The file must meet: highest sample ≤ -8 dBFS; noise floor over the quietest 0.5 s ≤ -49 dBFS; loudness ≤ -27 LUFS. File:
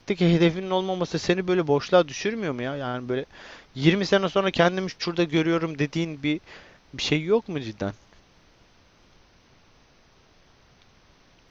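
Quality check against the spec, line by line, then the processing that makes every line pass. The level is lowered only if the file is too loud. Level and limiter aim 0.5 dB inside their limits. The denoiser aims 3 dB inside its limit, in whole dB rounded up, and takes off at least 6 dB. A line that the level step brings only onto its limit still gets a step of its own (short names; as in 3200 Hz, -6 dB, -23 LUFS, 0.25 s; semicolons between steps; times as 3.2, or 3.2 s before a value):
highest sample -5.0 dBFS: fail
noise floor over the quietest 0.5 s -58 dBFS: OK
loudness -24.5 LUFS: fail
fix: gain -3 dB; limiter -8.5 dBFS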